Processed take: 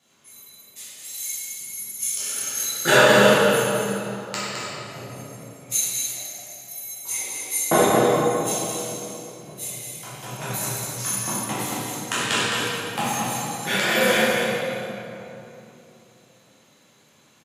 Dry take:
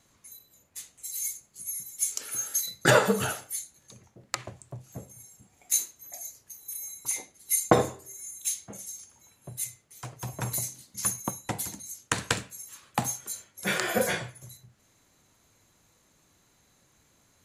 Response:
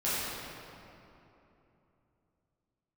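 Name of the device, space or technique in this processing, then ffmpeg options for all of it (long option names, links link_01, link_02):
stadium PA: -filter_complex "[0:a]highpass=170,equalizer=frequency=3100:width_type=o:width=0.74:gain=7,aecho=1:1:212.8|262.4:0.501|0.282[link_01];[1:a]atrim=start_sample=2205[link_02];[link_01][link_02]afir=irnorm=-1:irlink=0,volume=-3dB"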